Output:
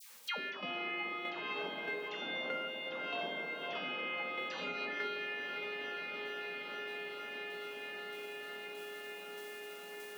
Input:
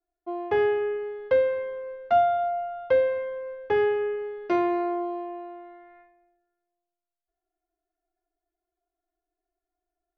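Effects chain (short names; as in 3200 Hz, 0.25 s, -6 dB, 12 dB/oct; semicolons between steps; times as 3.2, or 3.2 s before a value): gate -42 dBFS, range -9 dB; spectral gate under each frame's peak -25 dB weak; steep high-pass 190 Hz 48 dB/oct; negative-ratio compressor -54 dBFS, ratio -1; dispersion lows, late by 0.104 s, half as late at 1200 Hz; tremolo saw down 1.6 Hz, depth 60%; diffused feedback echo 0.469 s, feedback 65%, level -10.5 dB; on a send at -18 dB: reverb RT60 0.45 s, pre-delay 3 ms; on the sum: three-band squash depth 100%; gain +17 dB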